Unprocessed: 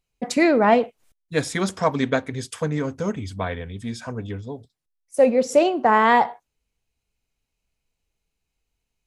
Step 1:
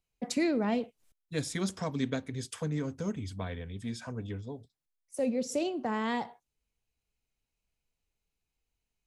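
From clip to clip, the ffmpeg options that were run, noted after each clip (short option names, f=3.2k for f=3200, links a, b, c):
-filter_complex "[0:a]acrossover=split=350|3000[a][b][c];[b]acompressor=threshold=-39dB:ratio=2[d];[a][d][c]amix=inputs=3:normalize=0,volume=-6.5dB"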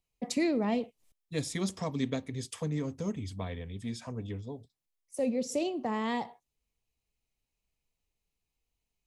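-af "equalizer=f=1.5k:w=6.8:g=-11.5"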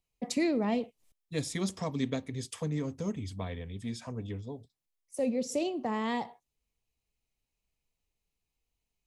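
-af anull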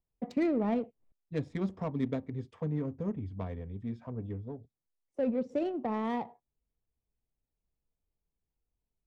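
-af "adynamicsmooth=sensitivity=2:basefreq=1k"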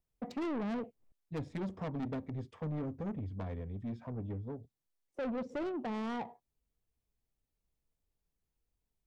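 -af "asoftclip=type=tanh:threshold=-34.5dB,volume=1dB"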